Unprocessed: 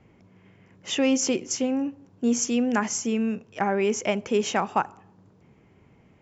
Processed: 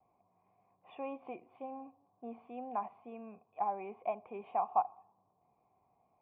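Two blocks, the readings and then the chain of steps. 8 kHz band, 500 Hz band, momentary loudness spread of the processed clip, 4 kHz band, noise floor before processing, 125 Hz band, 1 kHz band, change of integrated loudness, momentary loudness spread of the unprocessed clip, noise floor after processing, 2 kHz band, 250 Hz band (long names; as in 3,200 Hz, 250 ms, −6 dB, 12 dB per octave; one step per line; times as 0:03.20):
can't be measured, −16.0 dB, 16 LU, below −35 dB, −58 dBFS, below −20 dB, −6.0 dB, −14.5 dB, 6 LU, −76 dBFS, −25.0 dB, −24.5 dB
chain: pitch vibrato 2 Hz 61 cents
formant resonators in series a
high shelf with overshoot 1,900 Hz +6 dB, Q 1.5
level +2 dB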